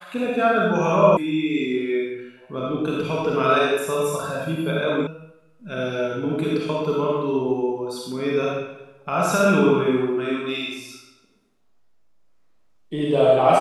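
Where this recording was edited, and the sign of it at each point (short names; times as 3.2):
1.17 sound cut off
5.07 sound cut off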